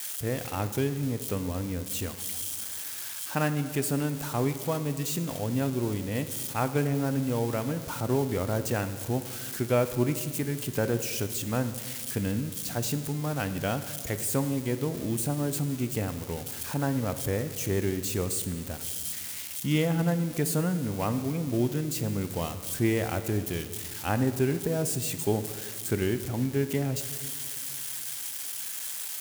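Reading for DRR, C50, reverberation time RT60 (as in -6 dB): 9.5 dB, 11.0 dB, 1.9 s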